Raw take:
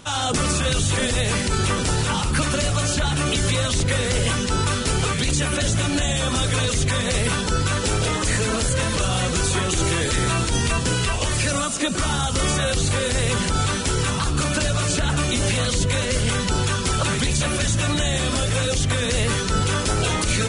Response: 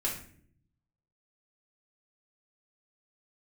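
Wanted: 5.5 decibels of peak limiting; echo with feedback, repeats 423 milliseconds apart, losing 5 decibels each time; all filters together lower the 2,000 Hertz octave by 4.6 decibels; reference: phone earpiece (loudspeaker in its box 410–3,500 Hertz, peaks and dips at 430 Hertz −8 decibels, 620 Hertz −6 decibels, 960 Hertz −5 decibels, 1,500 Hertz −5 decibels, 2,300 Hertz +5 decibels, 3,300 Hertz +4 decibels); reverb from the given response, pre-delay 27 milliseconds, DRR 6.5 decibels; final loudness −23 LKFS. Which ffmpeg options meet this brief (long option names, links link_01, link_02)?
-filter_complex "[0:a]equalizer=frequency=2000:width_type=o:gain=-7,alimiter=limit=-14dB:level=0:latency=1,aecho=1:1:423|846|1269|1692|2115|2538|2961:0.562|0.315|0.176|0.0988|0.0553|0.031|0.0173,asplit=2[link_01][link_02];[1:a]atrim=start_sample=2205,adelay=27[link_03];[link_02][link_03]afir=irnorm=-1:irlink=0,volume=-11.5dB[link_04];[link_01][link_04]amix=inputs=2:normalize=0,highpass=410,equalizer=frequency=430:width_type=q:width=4:gain=-8,equalizer=frequency=620:width_type=q:width=4:gain=-6,equalizer=frequency=960:width_type=q:width=4:gain=-5,equalizer=frequency=1500:width_type=q:width=4:gain=-5,equalizer=frequency=2300:width_type=q:width=4:gain=5,equalizer=frequency=3300:width_type=q:width=4:gain=4,lowpass=frequency=3500:width=0.5412,lowpass=frequency=3500:width=1.3066,volume=4.5dB"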